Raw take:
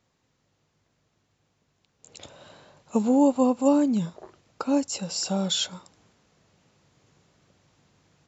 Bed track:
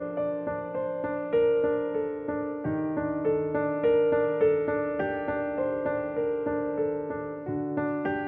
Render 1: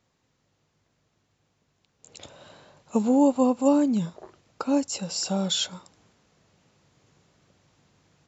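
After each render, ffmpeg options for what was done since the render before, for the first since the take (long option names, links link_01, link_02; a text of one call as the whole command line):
ffmpeg -i in.wav -af anull out.wav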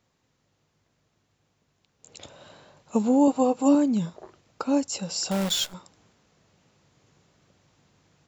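ffmpeg -i in.wav -filter_complex "[0:a]asettb=1/sr,asplit=3[link_01][link_02][link_03];[link_01]atrim=end=3.274[link_04];[link_02]atrim=start=3.27:end=3.75,asetpts=PTS-STARTPTS,afade=type=in:duration=0.004:curve=qsin,afade=type=out:start_time=0.476:duration=0.004:curve=qsin,aecho=1:1:6.4:0.69,atrim=end_sample=21168[link_05];[link_03]atrim=start=3.746[link_06];[link_04][link_05]acrossfade=duration=0.004:curve1=hsin:curve2=qsin[link_07];[link_07][link_06]acrossfade=duration=0.004:curve1=qsin:curve2=hsin,asettb=1/sr,asplit=3[link_08][link_09][link_10];[link_08]atrim=end=5.314[link_11];[link_09]atrim=start=5.31:end=5.74,asetpts=PTS-STARTPTS,afade=type=in:duration=0.004:curve=qsin,afade=type=out:start_time=0.426:duration=0.004:curve=qsin,acrusher=bits=6:dc=4:mix=0:aa=0.000001[link_12];[link_10]atrim=start=5.736[link_13];[link_11][link_12]acrossfade=duration=0.004:curve1=hsin:curve2=qsin[link_14];[link_14][link_13]acrossfade=duration=0.004:curve1=qsin:curve2=hsin" out.wav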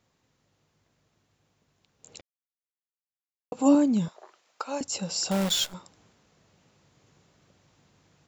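ffmpeg -i in.wav -filter_complex "[0:a]asettb=1/sr,asplit=3[link_01][link_02][link_03];[link_01]atrim=end=4.084[link_04];[link_02]atrim=start=4.08:end=4.81,asetpts=PTS-STARTPTS,afade=type=in:duration=0.004:curve=qsin,afade=type=out:start_time=0.726:duration=0.004:curve=qsin,highpass=710[link_05];[link_03]atrim=start=4.806[link_06];[link_04][link_05]acrossfade=duration=0.004:curve1=hsin:curve2=qsin[link_07];[link_07][link_06]acrossfade=duration=0.004:curve1=qsin:curve2=hsin,asplit=3[link_08][link_09][link_10];[link_08]atrim=end=2.21,asetpts=PTS-STARTPTS,afade=type=out:start_time=2.206:duration=0.004:curve=hsin[link_11];[link_09]atrim=start=2.21:end=3.52,asetpts=PTS-STARTPTS,volume=0[link_12];[link_10]atrim=start=3.52,asetpts=PTS-STARTPTS,afade=type=in:duration=0.004:curve=hsin[link_13];[link_11][link_12][link_13]concat=n=3:v=0:a=1" out.wav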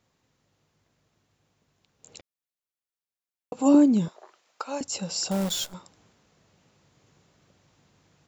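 ffmpeg -i in.wav -filter_complex "[0:a]asettb=1/sr,asplit=3[link_01][link_02][link_03];[link_01]atrim=end=3.744[link_04];[link_02]atrim=start=3.74:end=4.18,asetpts=PTS-STARTPTS,afade=type=in:duration=0.004:curve=qsin,afade=type=out:start_time=0.436:duration=0.004:curve=qsin,equalizer=frequency=350:width=1.5:gain=7[link_05];[link_03]atrim=start=4.176[link_06];[link_04][link_05]acrossfade=duration=0.004:curve1=hsin:curve2=qsin[link_07];[link_07][link_06]acrossfade=duration=0.004:curve1=qsin:curve2=hsin,asettb=1/sr,asplit=3[link_08][link_09][link_10];[link_08]atrim=end=5.284[link_11];[link_09]atrim=start=5.28:end=5.73,asetpts=PTS-STARTPTS,afade=type=in:duration=0.004:curve=qsin,afade=type=out:start_time=0.446:duration=0.004:curve=qsin,equalizer=frequency=2400:width=0.59:gain=-6[link_12];[link_10]atrim=start=5.726[link_13];[link_11][link_12]acrossfade=duration=0.004:curve1=hsin:curve2=qsin[link_14];[link_14][link_13]acrossfade=duration=0.004:curve1=qsin:curve2=hsin" out.wav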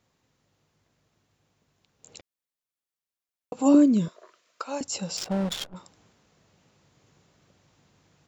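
ffmpeg -i in.wav -filter_complex "[0:a]asettb=1/sr,asplit=3[link_01][link_02][link_03];[link_01]atrim=end=3.744[link_04];[link_02]atrim=start=3.74:end=4.62,asetpts=PTS-STARTPTS,afade=type=in:duration=0.004:curve=qsin,afade=type=out:start_time=0.876:duration=0.004:curve=qsin,asuperstop=centerf=820:order=4:qfactor=3.4[link_05];[link_03]atrim=start=4.616[link_06];[link_04][link_05]acrossfade=duration=0.004:curve1=hsin:curve2=qsin[link_07];[link_07][link_06]acrossfade=duration=0.004:curve1=qsin:curve2=hsin,asplit=3[link_08][link_09][link_10];[link_08]afade=type=out:start_time=5.16:duration=0.02[link_11];[link_09]adynamicsmooth=sensitivity=5.5:basefreq=550,afade=type=in:start_time=5.16:duration=0.02,afade=type=out:start_time=5.75:duration=0.02[link_12];[link_10]afade=type=in:start_time=5.75:duration=0.02[link_13];[link_11][link_12][link_13]amix=inputs=3:normalize=0" out.wav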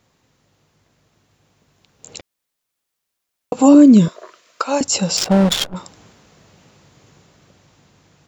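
ffmpeg -i in.wav -af "dynaudnorm=framelen=560:gausssize=7:maxgain=5dB,alimiter=level_in=9.5dB:limit=-1dB:release=50:level=0:latency=1" out.wav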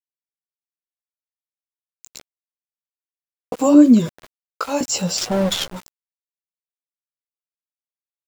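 ffmpeg -i in.wav -af "flanger=delay=8.1:depth=9.5:regen=12:speed=0.75:shape=sinusoidal,aeval=exprs='val(0)*gte(abs(val(0)),0.0224)':channel_layout=same" out.wav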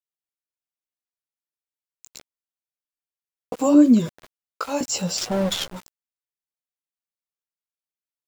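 ffmpeg -i in.wav -af "volume=-3.5dB" out.wav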